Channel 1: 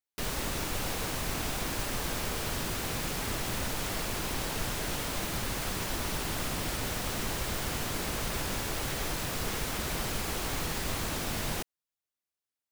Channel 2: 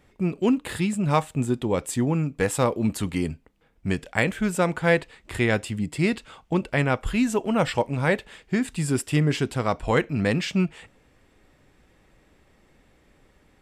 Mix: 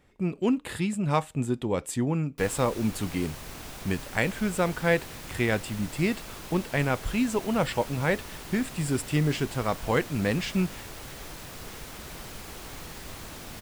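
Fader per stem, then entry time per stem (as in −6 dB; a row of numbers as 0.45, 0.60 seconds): −8.0, −3.5 decibels; 2.20, 0.00 seconds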